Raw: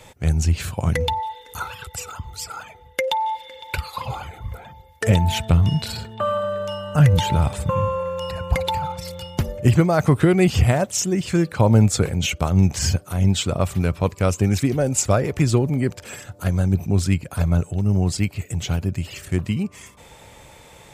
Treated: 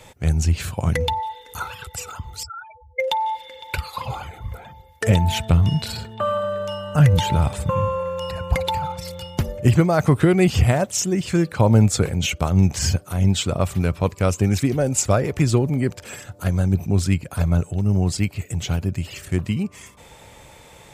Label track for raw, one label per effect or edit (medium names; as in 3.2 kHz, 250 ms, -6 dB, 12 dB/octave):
2.430000	3.000000	spectral contrast enhancement exponent 3.9